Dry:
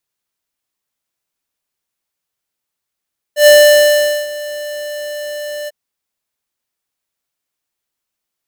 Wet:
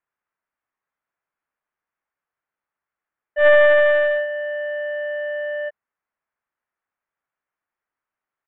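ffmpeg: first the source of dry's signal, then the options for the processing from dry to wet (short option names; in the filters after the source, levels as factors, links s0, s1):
-f lavfi -i "aevalsrc='0.596*(2*lt(mod(592*t,1),0.5)-1)':d=2.347:s=44100,afade=t=in:d=0.106,afade=t=out:st=0.106:d=0.802:silence=0.106,afade=t=out:st=2.32:d=0.027"
-af "aresample=8000,aeval=exprs='clip(val(0),-1,0.112)':c=same,aresample=44100,lowpass=f=1700:w=0.5412,lowpass=f=1700:w=1.3066,tiltshelf=f=790:g=-7.5"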